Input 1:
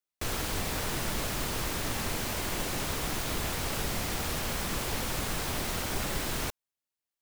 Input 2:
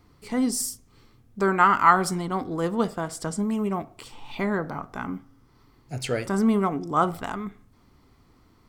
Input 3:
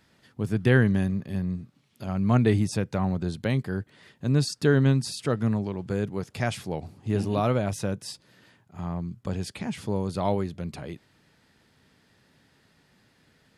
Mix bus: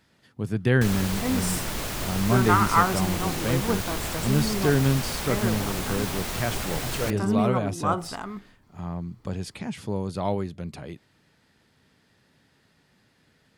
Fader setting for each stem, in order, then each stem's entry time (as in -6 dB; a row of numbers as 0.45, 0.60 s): +1.5, -3.5, -1.0 dB; 0.60, 0.90, 0.00 s